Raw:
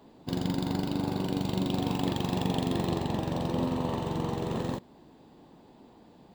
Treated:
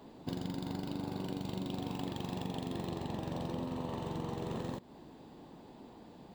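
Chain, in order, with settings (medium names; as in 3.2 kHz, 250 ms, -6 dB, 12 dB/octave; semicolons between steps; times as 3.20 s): compression 6:1, threshold -37 dBFS, peak gain reduction 13 dB; trim +1.5 dB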